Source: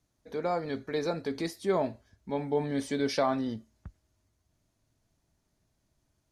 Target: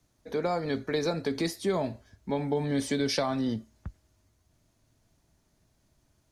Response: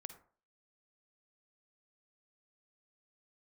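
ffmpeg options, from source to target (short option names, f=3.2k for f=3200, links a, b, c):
-filter_complex "[0:a]acrossover=split=170|3000[a][b][c];[b]acompressor=threshold=-32dB:ratio=6[d];[a][d][c]amix=inputs=3:normalize=0,volume=6dB"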